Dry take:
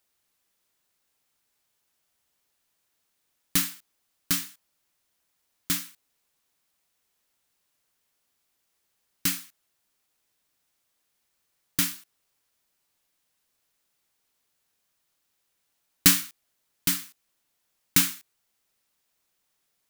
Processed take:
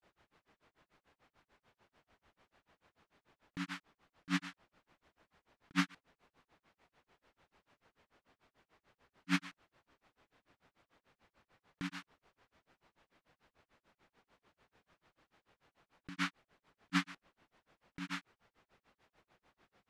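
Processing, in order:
Bessel low-pass filter 1,500 Hz, order 2
compressor whose output falls as the input rises −43 dBFS, ratio −1
granular cloud 136 ms, grains 6.8 per second, spray 31 ms, pitch spread up and down by 0 semitones
level +9.5 dB

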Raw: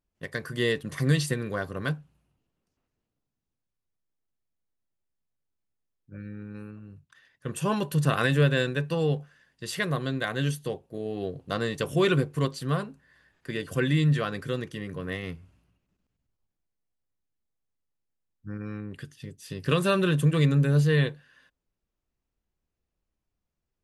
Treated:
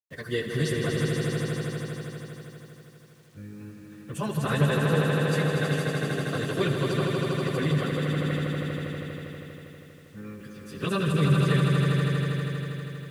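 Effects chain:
time stretch by phase vocoder 0.55×
echo that builds up and dies away 80 ms, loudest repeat 5, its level −6 dB
bit reduction 10 bits

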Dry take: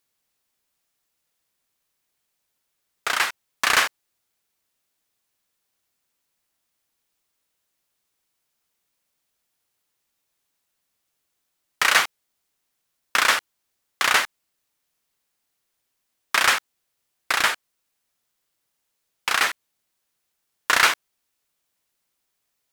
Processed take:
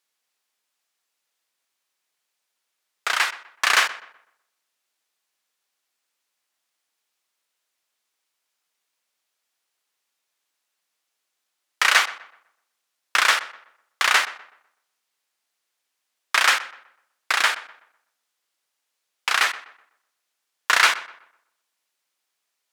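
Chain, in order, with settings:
meter weighting curve A
on a send: feedback echo with a low-pass in the loop 125 ms, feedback 35%, low-pass 2,500 Hz, level −15.5 dB

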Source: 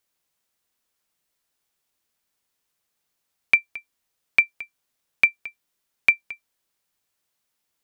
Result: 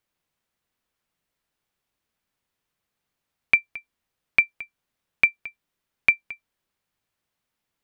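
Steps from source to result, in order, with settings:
bass and treble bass +5 dB, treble −8 dB

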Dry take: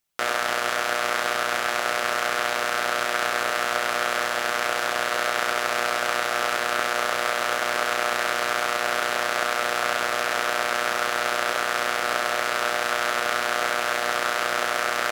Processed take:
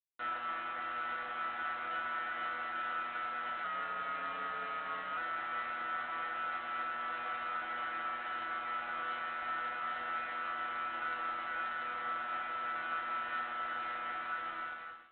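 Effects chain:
fade-out on the ending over 1.34 s
brickwall limiter −12.5 dBFS, peak gain reduction 7.5 dB
0:07.23–0:08.30: mains-hum notches 50/100/150/200/250/300/350/400/450 Hz
resonators tuned to a chord E3 fifth, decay 0.66 s
convolution reverb, pre-delay 3 ms, DRR −2 dB
0:03.64–0:05.17: frequency shifter −53 Hz
G.726 24 kbit/s 8,000 Hz

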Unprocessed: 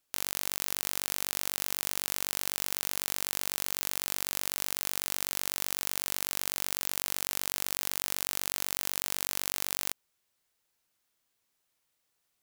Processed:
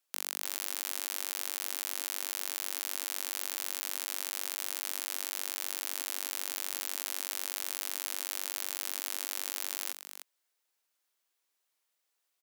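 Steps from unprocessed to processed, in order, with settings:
Bessel high-pass filter 410 Hz, order 8
single-tap delay 301 ms −10 dB
level −3 dB

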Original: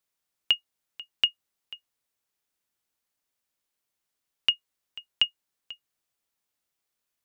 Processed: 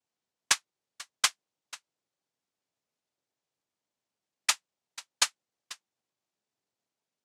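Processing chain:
low-pass filter 3,400 Hz
cochlear-implant simulation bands 2

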